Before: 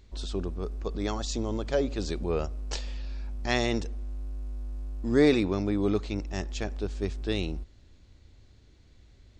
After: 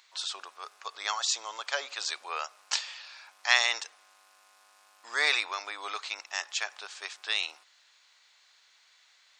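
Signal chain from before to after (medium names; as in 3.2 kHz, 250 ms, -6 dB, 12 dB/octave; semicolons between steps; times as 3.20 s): high-pass 970 Hz 24 dB/octave; trim +8 dB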